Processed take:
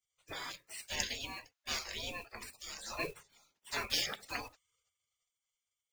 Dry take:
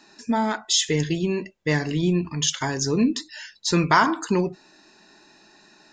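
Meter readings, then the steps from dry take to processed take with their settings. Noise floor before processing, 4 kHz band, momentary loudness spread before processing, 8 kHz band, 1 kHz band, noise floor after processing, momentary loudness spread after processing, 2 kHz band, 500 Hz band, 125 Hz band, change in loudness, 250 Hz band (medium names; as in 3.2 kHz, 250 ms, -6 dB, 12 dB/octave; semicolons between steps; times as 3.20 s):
-55 dBFS, -11.5 dB, 8 LU, -15.5 dB, -21.0 dB, under -85 dBFS, 13 LU, -13.5 dB, -21.5 dB, -29.0 dB, -16.5 dB, -30.0 dB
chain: block-companded coder 7-bit; spectral gate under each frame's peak -25 dB weak; three bands expanded up and down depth 40%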